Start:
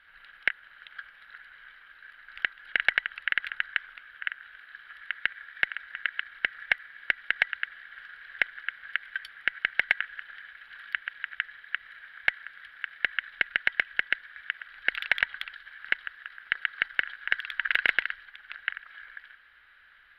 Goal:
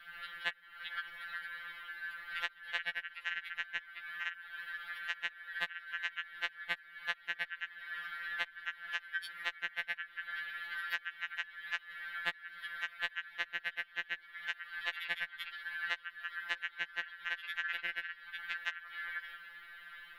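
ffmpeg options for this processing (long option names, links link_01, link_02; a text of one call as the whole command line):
ffmpeg -i in.wav -af "highshelf=frequency=8500:gain=11,acompressor=threshold=-40dB:ratio=6,afftfilt=real='re*2.83*eq(mod(b,8),0)':imag='im*2.83*eq(mod(b,8),0)':win_size=2048:overlap=0.75,volume=8dB" out.wav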